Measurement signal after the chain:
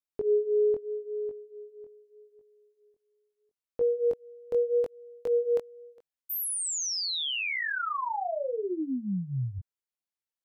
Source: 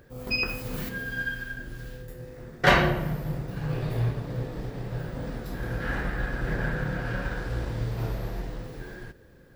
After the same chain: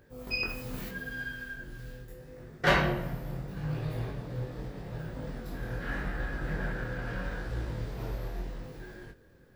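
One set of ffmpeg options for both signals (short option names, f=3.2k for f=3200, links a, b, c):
-af "flanger=delay=19:depth=4.5:speed=0.79,volume=-2dB"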